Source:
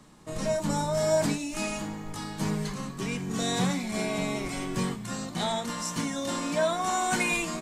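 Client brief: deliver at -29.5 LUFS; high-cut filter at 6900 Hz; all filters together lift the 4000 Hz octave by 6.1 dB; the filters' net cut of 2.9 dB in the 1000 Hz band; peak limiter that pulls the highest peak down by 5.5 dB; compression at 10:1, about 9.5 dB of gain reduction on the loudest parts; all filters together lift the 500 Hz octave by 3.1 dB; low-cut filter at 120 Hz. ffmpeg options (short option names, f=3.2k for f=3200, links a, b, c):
-af "highpass=120,lowpass=6.9k,equalizer=f=500:t=o:g=8,equalizer=f=1k:t=o:g=-8.5,equalizer=f=4k:t=o:g=8,acompressor=threshold=-28dB:ratio=10,volume=4.5dB,alimiter=limit=-20.5dB:level=0:latency=1"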